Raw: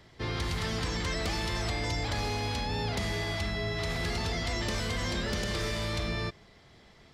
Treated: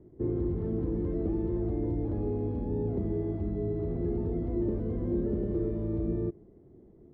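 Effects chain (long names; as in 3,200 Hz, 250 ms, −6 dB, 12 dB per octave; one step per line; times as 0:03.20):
low-pass with resonance 350 Hz, resonance Q 3.6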